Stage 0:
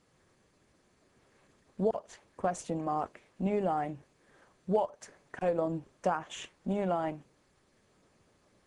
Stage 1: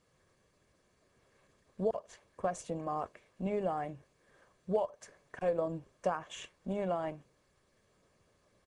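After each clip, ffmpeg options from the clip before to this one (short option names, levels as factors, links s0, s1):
-af "aecho=1:1:1.8:0.31,volume=0.668"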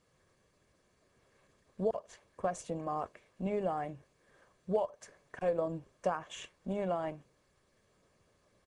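-af anull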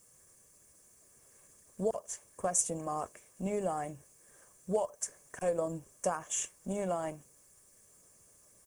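-af "aexciter=amount=10.8:drive=6.2:freq=6000"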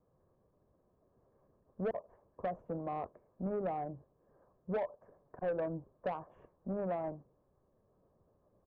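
-filter_complex "[0:a]acrossover=split=330[s0][s1];[s1]asoftclip=type=hard:threshold=0.0944[s2];[s0][s2]amix=inputs=2:normalize=0,lowpass=f=1000:w=0.5412,lowpass=f=1000:w=1.3066,asoftclip=type=tanh:threshold=0.0355"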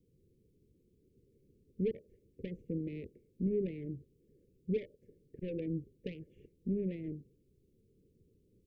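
-af "asuperstop=centerf=990:order=12:qfactor=0.57,volume=1.78"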